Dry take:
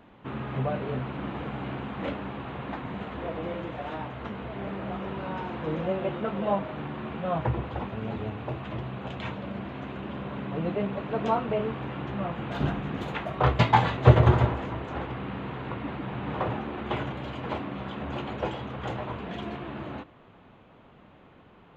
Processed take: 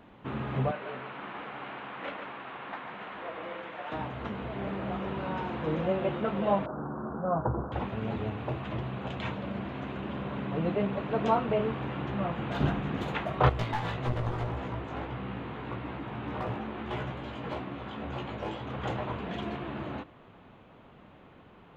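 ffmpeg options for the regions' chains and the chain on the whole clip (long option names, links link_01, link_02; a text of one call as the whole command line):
ffmpeg -i in.wav -filter_complex "[0:a]asettb=1/sr,asplit=3[link_01][link_02][link_03];[link_01]atrim=end=0.714[link_04];[link_02]atrim=start=0.71:end=3.92,asetpts=PTS-STARTPTS,afade=type=in:duration=0.004:curve=qsin,afade=type=out:start_time=3.206:duration=0.004:curve=qsin,bandpass=frequency=1700:width_type=q:width=0.65,aecho=1:1:144:0.447,atrim=end_sample=141561[link_05];[link_03]atrim=start=3.916[link_06];[link_04][link_05]acrossfade=duration=0.004:curve1=hsin:curve2=qsin[link_07];[link_07][link_06]acrossfade=duration=0.004:curve1=qsin:curve2=hsin,asettb=1/sr,asplit=3[link_08][link_09][link_10];[link_08]atrim=end=6.664[link_11];[link_09]atrim=start=6.66:end=7.72,asetpts=PTS-STARTPTS,afade=type=in:duration=0.004:curve=qsin,afade=type=out:start_time=1.056:duration=0.004:curve=qsin,asuperstop=centerf=3700:order=20:qfactor=0.55,equalizer=frequency=100:width=2:gain=-8[link_12];[link_10]atrim=start=7.716[link_13];[link_11][link_12]acrossfade=duration=0.004:curve1=hsin:curve2=qsin[link_14];[link_14][link_13]acrossfade=duration=0.004:curve1=qsin:curve2=hsin,asettb=1/sr,asplit=3[link_15][link_16][link_17];[link_15]atrim=end=13.494[link_18];[link_16]atrim=start=13.49:end=18.67,asetpts=PTS-STARTPTS,afade=type=in:duration=0.004:curve=qsin,afade=type=out:start_time=5.176:duration=0.004:curve=qsin,aeval=exprs='clip(val(0),-1,0.0596)':channel_layout=same,acompressor=threshold=-27dB:ratio=2.5:attack=3.2:release=140:knee=1:detection=peak,flanger=delay=16:depth=2.6:speed=1.7[link_19];[link_17]atrim=start=18.666[link_20];[link_18][link_19]acrossfade=duration=0.004:curve1=hsin:curve2=qsin[link_21];[link_21][link_20]acrossfade=duration=0.004:curve1=qsin:curve2=hsin" out.wav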